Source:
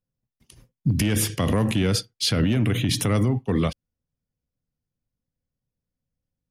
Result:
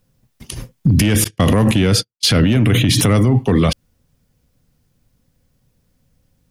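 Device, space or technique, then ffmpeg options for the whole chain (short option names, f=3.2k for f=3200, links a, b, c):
loud club master: -filter_complex "[0:a]asettb=1/sr,asplit=3[a][b][c];[a]atrim=end=1.244[d];[b]atrim=start=1.24:end=2.92,asetpts=PTS-STARTPTS,afade=t=in:d=0.004:c=qsin,afade=t=out:st=1.676:d=0.004:c=qsin,agate=range=-44dB:threshold=-24dB:ratio=16:detection=peak[e];[c]atrim=start=2.916[f];[d][e]acrossfade=d=0.004:c1=hsin:c2=qsin[g];[g][f]acrossfade=d=0.004:c1=qsin:c2=hsin,acompressor=threshold=-25dB:ratio=2,asoftclip=type=hard:threshold=-17.5dB,alimiter=level_in=28.5dB:limit=-1dB:release=50:level=0:latency=1,volume=-5.5dB"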